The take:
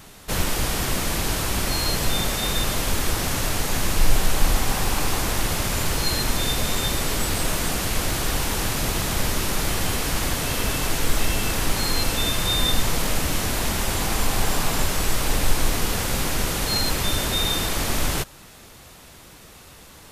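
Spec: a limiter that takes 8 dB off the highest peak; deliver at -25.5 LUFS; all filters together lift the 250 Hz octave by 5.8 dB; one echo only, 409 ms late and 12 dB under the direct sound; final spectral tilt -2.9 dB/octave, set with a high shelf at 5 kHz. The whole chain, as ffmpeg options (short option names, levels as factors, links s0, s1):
-af "equalizer=f=250:t=o:g=7.5,highshelf=f=5000:g=5,alimiter=limit=0.282:level=0:latency=1,aecho=1:1:409:0.251,volume=0.631"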